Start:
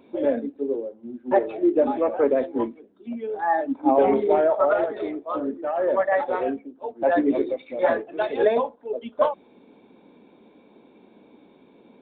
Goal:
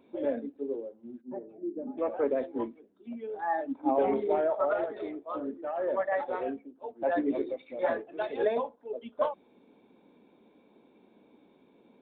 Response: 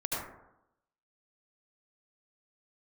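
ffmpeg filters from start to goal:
-filter_complex "[0:a]asplit=3[s0][s1][s2];[s0]afade=t=out:st=1.2:d=0.02[s3];[s1]bandpass=f=200:t=q:w=1.9:csg=0,afade=t=in:st=1.2:d=0.02,afade=t=out:st=1.97:d=0.02[s4];[s2]afade=t=in:st=1.97:d=0.02[s5];[s3][s4][s5]amix=inputs=3:normalize=0,volume=0.398"

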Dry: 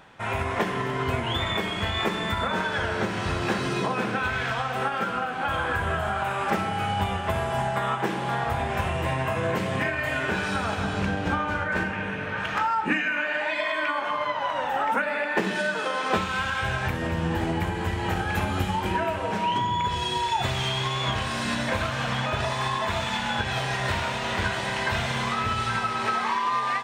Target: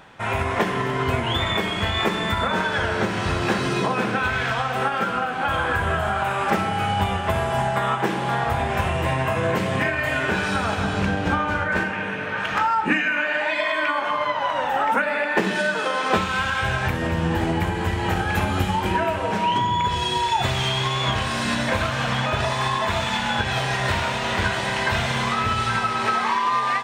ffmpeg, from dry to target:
-filter_complex "[0:a]asettb=1/sr,asplit=3[s0][s1][s2];[s0]atrim=end=11.794[s3];[s1]atrim=start=11.79:end=12.51,asetpts=PTS-STARTPTS,afade=t=in:d=0.004:c=qsin,afade=t=out:st=0.716:d=0.004:c=qsin,highpass=f=190:p=1[s4];[s2]atrim=start=12.506[s5];[s3][s4]acrossfade=d=0.004:c1=hsin:c2=qsin[s6];[s6][s5]acrossfade=d=0.004:c1=qsin:c2=hsin,volume=1.58"

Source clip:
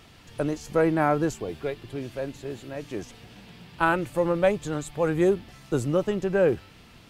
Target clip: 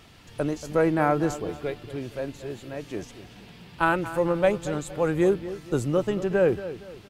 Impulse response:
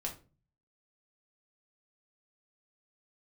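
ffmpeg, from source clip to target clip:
-filter_complex "[0:a]asplit=2[s0][s1];[s1]adelay=232,lowpass=f=3600:p=1,volume=0.211,asplit=2[s2][s3];[s3]adelay=232,lowpass=f=3600:p=1,volume=0.37,asplit=2[s4][s5];[s5]adelay=232,lowpass=f=3600:p=1,volume=0.37,asplit=2[s6][s7];[s7]adelay=232,lowpass=f=3600:p=1,volume=0.37[s8];[s0][s2][s4][s6][s8]amix=inputs=5:normalize=0"

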